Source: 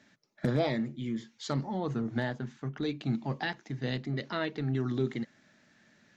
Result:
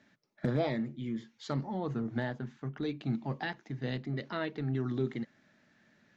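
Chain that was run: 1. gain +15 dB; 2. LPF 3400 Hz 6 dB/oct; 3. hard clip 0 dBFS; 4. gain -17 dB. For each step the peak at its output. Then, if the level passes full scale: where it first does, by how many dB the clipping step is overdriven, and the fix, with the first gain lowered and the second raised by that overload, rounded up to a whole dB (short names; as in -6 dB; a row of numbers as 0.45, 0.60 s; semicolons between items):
-3.5, -3.5, -3.5, -20.5 dBFS; no overload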